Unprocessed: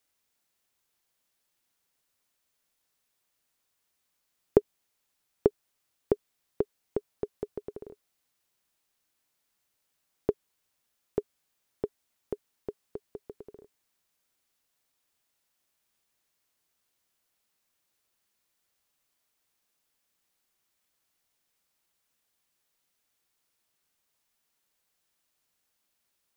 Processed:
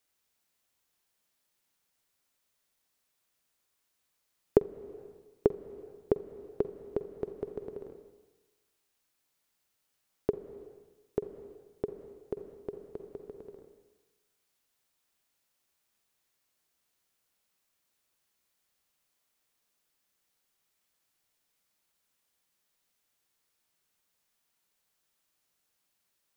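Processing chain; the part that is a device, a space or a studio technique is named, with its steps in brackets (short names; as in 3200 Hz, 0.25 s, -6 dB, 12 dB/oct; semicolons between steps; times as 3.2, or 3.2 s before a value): compressed reverb return (on a send at -5 dB: reverb RT60 1.2 s, pre-delay 44 ms + compressor 6:1, threshold -34 dBFS, peak gain reduction 16 dB); on the sum: gain -1.5 dB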